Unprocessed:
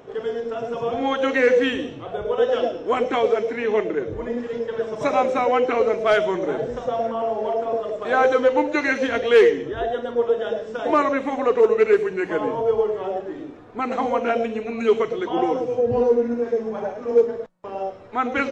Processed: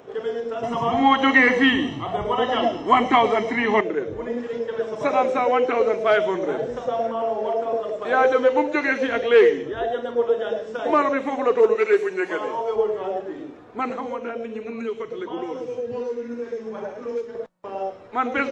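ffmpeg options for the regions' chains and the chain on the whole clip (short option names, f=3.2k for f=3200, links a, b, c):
-filter_complex "[0:a]asettb=1/sr,asplit=3[a][b][c];[a]atrim=end=0.634[d];[b]atrim=start=0.63:end=3.81,asetpts=PTS-STARTPTS,afade=t=in:d=0.004:c=qsin,afade=t=out:st=3.176:d=0.004:c=qsin,aecho=1:1:1:0.77,atrim=end_sample=140238,acontrast=46[e];[c]atrim=start=3.806[f];[d][e]acrossfade=d=0.004:c1=hsin:c2=qsin[g];[g][f]acrossfade=d=0.004:c1=qsin:c2=hsin,asettb=1/sr,asplit=3[h][i][j];[h]atrim=end=11.754[k];[i]atrim=start=11.75:end=12.76,asetpts=PTS-STARTPTS,afade=t=in:d=0.004:c=qsin,afade=t=out:st=1.006:d=0.004:c=qsin,bass=f=250:g=-14,treble=f=4k:g=5,aecho=1:1:5.4:0.48,atrim=end_sample=44541[l];[j]atrim=start=12.756[m];[k][l]acrossfade=d=0.004:c1=hsin:c2=qsin[n];[n][m]acrossfade=d=0.004:c1=qsin:c2=hsin,asettb=1/sr,asplit=3[o][p][q];[o]atrim=end=13.904[r];[p]atrim=start=13.9:end=17.35,asetpts=PTS-STARTPTS,afade=t=in:d=0.004:c=qsin,afade=t=out:st=3.446:d=0.004:c=qsin,equalizer=f=720:w=4.3:g=-8,acrossover=split=120|1600[s][t][u];[s]acompressor=threshold=-54dB:ratio=4[v];[t]acompressor=threshold=-27dB:ratio=4[w];[u]acompressor=threshold=-47dB:ratio=4[x];[v][w][x]amix=inputs=3:normalize=0[y];[q]atrim=start=17.346[z];[r][y]acrossfade=d=0.004:c1=hsin:c2=qsin[aa];[aa][z]acrossfade=d=0.004:c1=qsin:c2=hsin,acrossover=split=3800[ab][ac];[ac]acompressor=threshold=-48dB:ratio=4:attack=1:release=60[ad];[ab][ad]amix=inputs=2:normalize=0,lowshelf=f=98:g=-9.5"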